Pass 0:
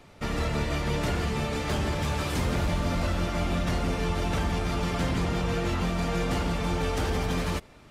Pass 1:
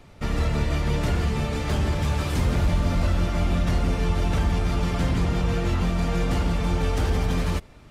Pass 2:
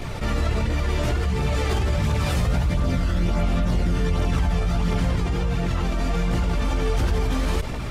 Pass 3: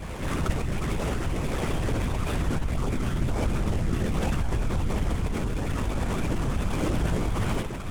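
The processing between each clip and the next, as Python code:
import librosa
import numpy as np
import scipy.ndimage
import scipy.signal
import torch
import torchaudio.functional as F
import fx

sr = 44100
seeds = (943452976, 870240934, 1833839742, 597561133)

y1 = fx.low_shelf(x, sr, hz=140.0, db=8.5)
y2 = fx.tremolo_random(y1, sr, seeds[0], hz=3.5, depth_pct=55)
y2 = fx.chorus_voices(y2, sr, voices=2, hz=0.71, base_ms=17, depth_ms=1.8, mix_pct=60)
y2 = fx.env_flatten(y2, sr, amount_pct=70)
y3 = y2 + 10.0 ** (-13.5 / 20.0) * np.pad(y2, (int(828 * sr / 1000.0), 0))[:len(y2)]
y3 = fx.lpc_vocoder(y3, sr, seeds[1], excitation='whisper', order=10)
y3 = fx.noise_mod_delay(y3, sr, seeds[2], noise_hz=5800.0, depth_ms=0.032)
y3 = F.gain(torch.from_numpy(y3), -5.0).numpy()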